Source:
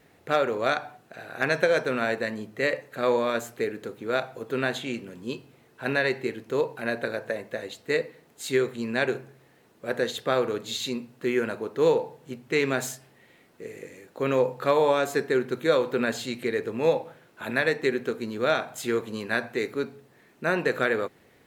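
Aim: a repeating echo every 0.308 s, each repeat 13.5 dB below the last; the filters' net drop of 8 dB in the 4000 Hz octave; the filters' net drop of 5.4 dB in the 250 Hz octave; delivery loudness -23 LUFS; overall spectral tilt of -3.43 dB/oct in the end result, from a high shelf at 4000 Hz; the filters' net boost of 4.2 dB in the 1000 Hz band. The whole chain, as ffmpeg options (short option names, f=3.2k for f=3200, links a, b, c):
-af "equalizer=f=250:t=o:g=-8,equalizer=f=1k:t=o:g=7,highshelf=f=4k:g=-5.5,equalizer=f=4k:t=o:g=-6.5,aecho=1:1:308|616:0.211|0.0444,volume=4dB"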